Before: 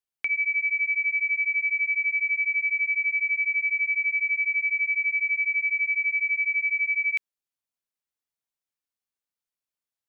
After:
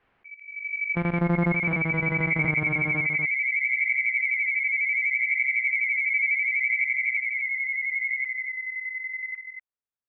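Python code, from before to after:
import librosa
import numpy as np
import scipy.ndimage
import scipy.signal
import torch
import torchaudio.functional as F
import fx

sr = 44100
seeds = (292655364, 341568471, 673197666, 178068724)

y = fx.sample_sort(x, sr, block=256, at=(0.95, 1.52), fade=0.02)
y = scipy.signal.sosfilt(scipy.signal.butter(4, 2200.0, 'lowpass', fs=sr, output='sos'), y)
y = fx.transient(y, sr, attack_db=9, sustain_db=-3, at=(4.7, 5.12))
y = fx.comb(y, sr, ms=1.2, depth=0.77, at=(6.13, 6.84))
y = fx.level_steps(y, sr, step_db=14)
y = fx.auto_swell(y, sr, attack_ms=501.0)
y = fx.echo_pitch(y, sr, ms=650, semitones=-1, count=2, db_per_echo=-3.0)
y = y + 10.0 ** (-6.5 / 20.0) * np.pad(y, (int(244 * sr / 1000.0), 0))[:len(y)]
y = fx.pre_swell(y, sr, db_per_s=98.0)
y = y * librosa.db_to_amplitude(3.5)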